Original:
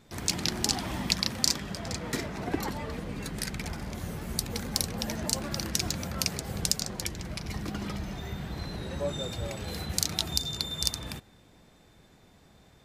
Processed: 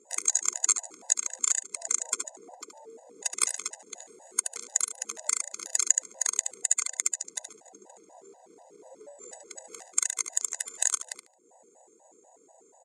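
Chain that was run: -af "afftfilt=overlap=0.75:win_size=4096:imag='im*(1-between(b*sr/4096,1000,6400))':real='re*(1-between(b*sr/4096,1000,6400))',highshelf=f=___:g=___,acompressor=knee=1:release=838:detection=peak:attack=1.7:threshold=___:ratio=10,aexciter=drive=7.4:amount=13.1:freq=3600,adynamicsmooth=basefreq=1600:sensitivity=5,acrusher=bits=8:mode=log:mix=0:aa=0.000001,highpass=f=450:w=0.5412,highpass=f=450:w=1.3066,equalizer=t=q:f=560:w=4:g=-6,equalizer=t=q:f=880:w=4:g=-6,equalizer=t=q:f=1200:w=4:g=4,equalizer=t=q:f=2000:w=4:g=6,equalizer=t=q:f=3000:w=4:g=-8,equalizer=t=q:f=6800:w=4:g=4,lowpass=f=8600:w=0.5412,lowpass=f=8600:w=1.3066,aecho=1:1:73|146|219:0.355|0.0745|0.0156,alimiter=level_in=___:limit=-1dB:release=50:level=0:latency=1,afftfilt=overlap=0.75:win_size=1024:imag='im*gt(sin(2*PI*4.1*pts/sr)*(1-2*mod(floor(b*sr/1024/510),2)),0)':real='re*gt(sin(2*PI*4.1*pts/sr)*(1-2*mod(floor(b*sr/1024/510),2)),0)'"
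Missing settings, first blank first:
5100, -2, -43dB, 13.5dB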